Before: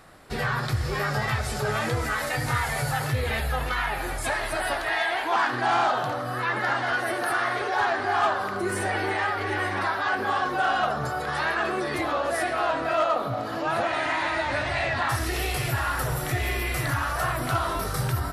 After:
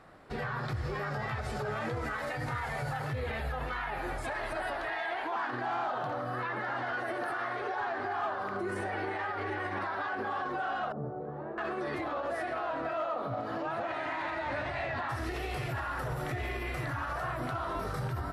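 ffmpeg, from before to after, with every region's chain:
-filter_complex "[0:a]asettb=1/sr,asplit=3[s0][s1][s2];[s0]atrim=end=10.924[s3];[s1]atrim=start=10.92:end=11.58,asetpts=PTS-STARTPTS,afade=t=in:d=0.004:c=qsin,afade=t=out:st=0.656:d=0.004:c=qsin,asuperpass=centerf=250:order=4:qfactor=0.65,aemphasis=mode=production:type=75kf[s4];[s2]atrim=start=11.576[s5];[s3][s4]acrossfade=d=0.004:c1=hsin:c2=qsin[s6];[s6][s5]acrossfade=d=0.004:c1=qsin:c2=hsin,lowpass=f=1600:p=1,lowshelf=f=110:g=-5.5,alimiter=level_in=1.06:limit=0.0631:level=0:latency=1:release=61,volume=0.944,volume=0.794"

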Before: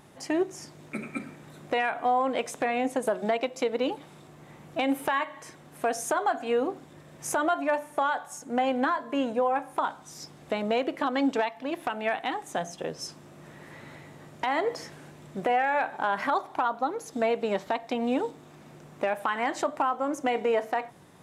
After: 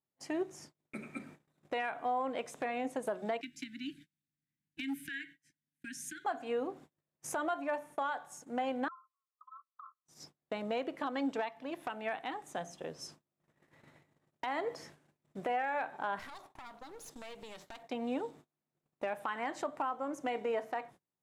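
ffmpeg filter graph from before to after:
-filter_complex "[0:a]asettb=1/sr,asplit=3[s0][s1][s2];[s0]atrim=end=3.414[s3];[s1]atrim=start=3.41:end=6.25,asetpts=PTS-STARTPTS,afade=t=in:d=0.004:c=qsin,afade=t=out:st=2.836:d=0.004:c=qsin,asuperstop=centerf=700:order=20:qfactor=0.58,asoftclip=type=hard:threshold=0.0668[s4];[s2]atrim=start=6.246[s5];[s3][s4]acrossfade=d=0.004:c1=hsin:c2=qsin[s6];[s6][s5]acrossfade=d=0.004:c1=qsin:c2=hsin,asettb=1/sr,asplit=3[s7][s8][s9];[s7]atrim=end=8.884[s10];[s8]atrim=start=8.88:end=10.06,asetpts=PTS-STARTPTS,afade=t=in:d=0.004:c=qsin,afade=t=out:st=1.176:d=0.004:c=qsin,asuperpass=centerf=1200:order=20:qfactor=3.8,acompressor=threshold=0.0126:ratio=6:attack=3.2:release=140:knee=1:detection=peak[s11];[s9]atrim=start=10.056[s12];[s10][s11]acrossfade=d=0.004:c1=hsin:c2=qsin[s13];[s13][s12]acrossfade=d=0.004:c1=qsin:c2=hsin,asettb=1/sr,asplit=3[s14][s15][s16];[s14]atrim=end=16.194[s17];[s15]atrim=start=16.19:end=17.83,asetpts=PTS-STARTPTS,afade=t=in:d=0.004:c=qsin,afade=t=out:st=1.636:d=0.004:c=qsin,highshelf=f=3700:g=6,acrossover=split=120|3000[s18][s19][s20];[s19]acompressor=threshold=0.02:ratio=6:attack=3.2:release=140:knee=2.83:detection=peak[s21];[s18][s21][s20]amix=inputs=3:normalize=0,aeval=exprs='clip(val(0),-1,0.00596)':c=same[s22];[s16]atrim=start=17.826[s23];[s17][s22]acrossfade=d=0.004:c1=hsin:c2=qsin[s24];[s24][s23]acrossfade=d=0.004:c1=qsin:c2=hsin,agate=range=0.0224:threshold=0.00631:ratio=16:detection=peak,adynamicequalizer=threshold=0.0112:dfrequency=2700:dqfactor=0.7:tfrequency=2700:tqfactor=0.7:attack=5:release=100:ratio=0.375:range=1.5:mode=cutabove:tftype=highshelf,volume=0.355"

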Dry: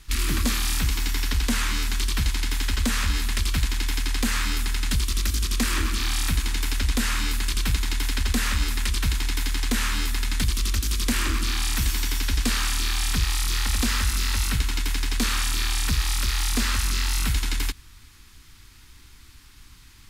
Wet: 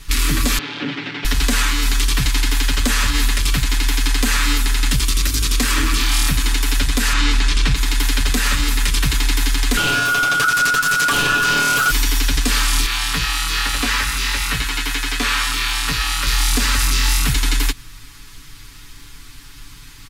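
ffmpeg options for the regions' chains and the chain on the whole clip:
-filter_complex "[0:a]asettb=1/sr,asplit=3[s0][s1][s2];[s0]atrim=end=0.584[s3];[s1]atrim=start=0.58:end=1.25,asetpts=PTS-STARTPTS,afade=t=in:d=0.004:c=qsin,afade=t=out:st=0.666:d=0.004:c=qsin,aeval=exprs='0.0562*(abs(mod(val(0)/0.0562+3,4)-2)-1)':c=same,highpass=f=190:w=0.5412,highpass=f=190:w=1.3066,equalizer=f=280:t=q:w=4:g=6,equalizer=f=640:t=q:w=4:g=-9,equalizer=f=1100:t=q:w=4:g=-5,lowpass=f=3300:w=0.5412,lowpass=f=3300:w=1.3066[s4];[s2]atrim=start=1.246[s5];[s3][s4]acrossfade=d=0.004:c1=hsin:c2=qsin[s6];[s6][s5]acrossfade=d=0.004:c1=qsin:c2=hsin,asettb=1/sr,asplit=3[s7][s8][s9];[s7]atrim=end=7.134[s10];[s8]atrim=start=7.13:end=7.75,asetpts=PTS-STARTPTS,afade=t=in:d=0.004:c=qsin,afade=t=out:st=0.616:d=0.004:c=qsin,lowpass=6000,acontrast=48[s11];[s9]atrim=start=7.746[s12];[s10][s11]acrossfade=d=0.004:c1=hsin:c2=qsin[s13];[s13][s12]acrossfade=d=0.004:c1=qsin:c2=hsin,asettb=1/sr,asplit=3[s14][s15][s16];[s14]atrim=end=9.774[s17];[s15]atrim=start=9.77:end=11.91,asetpts=PTS-STARTPTS,afade=t=in:d=0.004:c=qsin,afade=t=out:st=2.136:d=0.004:c=qsin,equalizer=f=1200:w=0.89:g=7.5,aeval=exprs='val(0)*sin(2*PI*1400*n/s)':c=same[s18];[s16]atrim=start=11.906[s19];[s17][s18]acrossfade=d=0.004:c1=hsin:c2=qsin[s20];[s20][s19]acrossfade=d=0.004:c1=qsin:c2=hsin,asettb=1/sr,asplit=3[s21][s22][s23];[s21]atrim=end=12.864[s24];[s22]atrim=start=12.86:end=16.27,asetpts=PTS-STARTPTS,afade=t=in:d=0.004:c=qsin,afade=t=out:st=3.406:d=0.004:c=qsin,acrossover=split=3500[s25][s26];[s26]acompressor=threshold=0.0141:ratio=4:attack=1:release=60[s27];[s25][s27]amix=inputs=2:normalize=0,lowshelf=f=450:g=-10,asplit=2[s28][s29];[s29]adelay=18,volume=0.473[s30];[s28][s30]amix=inputs=2:normalize=0,atrim=end_sample=150381[s31];[s23]atrim=start=16.266[s32];[s24][s31]acrossfade=d=0.004:c1=hsin:c2=qsin[s33];[s33][s32]acrossfade=d=0.004:c1=qsin:c2=hsin,aecho=1:1:7:0.76,alimiter=limit=0.158:level=0:latency=1:release=84,volume=2.66"

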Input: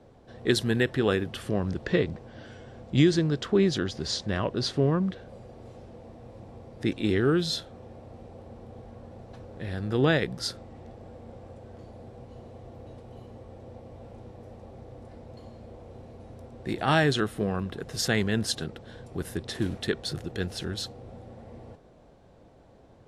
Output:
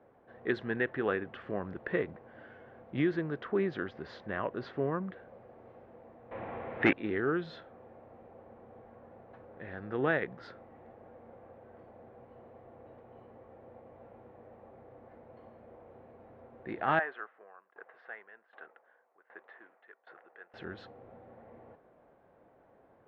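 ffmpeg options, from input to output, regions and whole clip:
-filter_complex "[0:a]asettb=1/sr,asplit=3[s0][s1][s2];[s0]atrim=end=6.314[s3];[s1]atrim=start=6.31:end=6.93,asetpts=PTS-STARTPTS,afade=t=in:d=0.004:c=qsin,afade=t=out:st=0.616:d=0.004:c=qsin,lowpass=f=3600:w=0.5412,lowpass=f=3600:w=1.3066,equalizer=f=2600:w=0.5:g=12,aeval=exprs='0.398*sin(PI/2*2.24*val(0)/0.398)':c=same[s4];[s2]atrim=start=6.926[s5];[s3][s4]acrossfade=d=0.004:c1=hsin:c2=qsin[s6];[s6][s5]acrossfade=d=0.004:c1=qsin:c2=hsin,asettb=1/sr,asplit=3[s7][s8][s9];[s7]atrim=end=16.994[s10];[s8]atrim=start=16.99:end=20.54,asetpts=PTS-STARTPTS,afade=t=in:d=0.004:c=qsin,afade=t=out:st=3.546:d=0.004:c=qsin,asplit=2[s11][s12];[s12]highpass=f=720:p=1,volume=2.51,asoftclip=type=tanh:threshold=0.266[s13];[s11][s13]amix=inputs=2:normalize=0,lowpass=f=1300:p=1,volume=0.501,highpass=710,lowpass=2600,aeval=exprs='val(0)*pow(10,-20*if(lt(mod(1.3*n/s,1),2*abs(1.3)/1000),1-mod(1.3*n/s,1)/(2*abs(1.3)/1000),(mod(1.3*n/s,1)-2*abs(1.3)/1000)/(1-2*abs(1.3)/1000))/20)':c=same[s14];[s9]atrim=start=20.536[s15];[s10][s14]acrossfade=d=0.004:c1=hsin:c2=qsin[s16];[s16][s15]acrossfade=d=0.004:c1=qsin:c2=hsin,lowpass=f=1900:w=0.5412,lowpass=f=1900:w=1.3066,aemphasis=mode=production:type=riaa,volume=0.708"

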